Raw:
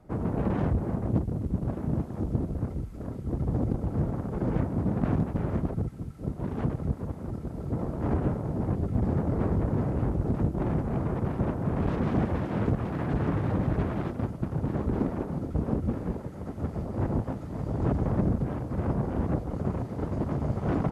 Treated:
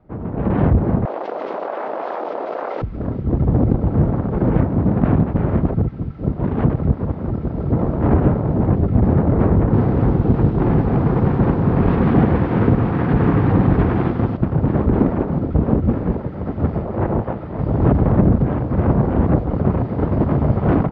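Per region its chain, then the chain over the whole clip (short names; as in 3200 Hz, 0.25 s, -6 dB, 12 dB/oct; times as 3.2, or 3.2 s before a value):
1.05–2.82 HPF 570 Hz 24 dB/oct + fast leveller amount 100%
9.63–14.37 bell 69 Hz -4.5 dB 0.41 oct + notch 610 Hz, Q 8.1 + lo-fi delay 99 ms, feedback 35%, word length 8-bit, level -7.5 dB
16.78–17.59 tone controls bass -6 dB, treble -6 dB + notch 270 Hz, Q 6.6
whole clip: Bessel low-pass 2600 Hz, order 8; AGC gain up to 12 dB; gain +1 dB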